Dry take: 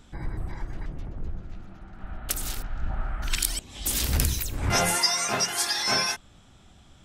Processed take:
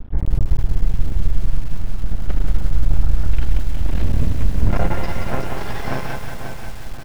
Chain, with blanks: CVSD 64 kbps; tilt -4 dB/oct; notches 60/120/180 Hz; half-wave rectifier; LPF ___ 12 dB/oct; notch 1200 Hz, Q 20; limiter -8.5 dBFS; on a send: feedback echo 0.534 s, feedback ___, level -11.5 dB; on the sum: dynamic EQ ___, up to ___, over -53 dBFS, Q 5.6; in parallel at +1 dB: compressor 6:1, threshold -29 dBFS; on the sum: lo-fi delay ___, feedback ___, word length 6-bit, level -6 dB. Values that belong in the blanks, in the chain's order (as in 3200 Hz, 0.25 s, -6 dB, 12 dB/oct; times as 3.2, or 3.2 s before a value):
2800 Hz, 42%, 590 Hz, +3 dB, 0.181 s, 55%